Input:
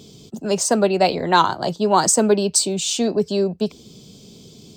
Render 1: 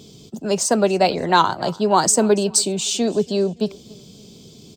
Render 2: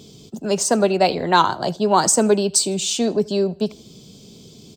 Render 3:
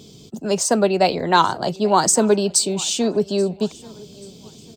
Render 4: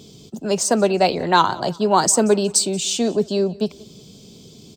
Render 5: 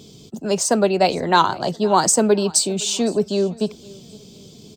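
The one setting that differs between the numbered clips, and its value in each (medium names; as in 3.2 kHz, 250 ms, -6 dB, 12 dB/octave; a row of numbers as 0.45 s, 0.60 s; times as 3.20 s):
feedback delay, time: 283 ms, 78 ms, 833 ms, 182 ms, 513 ms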